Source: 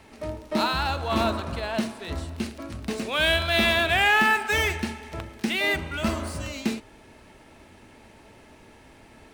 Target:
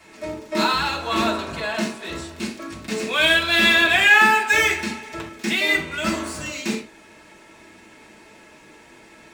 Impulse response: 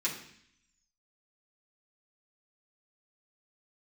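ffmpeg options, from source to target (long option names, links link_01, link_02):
-filter_complex "[0:a]bass=frequency=250:gain=-7,treble=frequency=4000:gain=2[link_01];[1:a]atrim=start_sample=2205,afade=type=out:start_time=0.14:duration=0.01,atrim=end_sample=6615[link_02];[link_01][link_02]afir=irnorm=-1:irlink=0"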